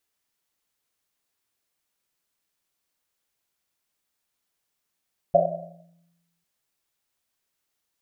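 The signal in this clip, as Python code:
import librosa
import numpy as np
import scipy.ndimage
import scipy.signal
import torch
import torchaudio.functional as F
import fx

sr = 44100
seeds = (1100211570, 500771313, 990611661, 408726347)

y = fx.risset_drum(sr, seeds[0], length_s=1.1, hz=170.0, decay_s=1.26, noise_hz=630.0, noise_width_hz=150.0, noise_pct=80)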